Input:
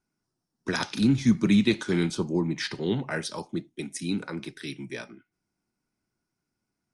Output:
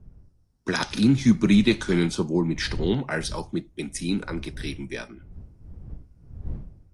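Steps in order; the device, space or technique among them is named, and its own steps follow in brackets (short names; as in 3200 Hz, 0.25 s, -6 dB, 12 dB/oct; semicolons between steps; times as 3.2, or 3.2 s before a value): smartphone video outdoors (wind noise 83 Hz -41 dBFS; AGC gain up to 3 dB; AAC 64 kbps 32000 Hz)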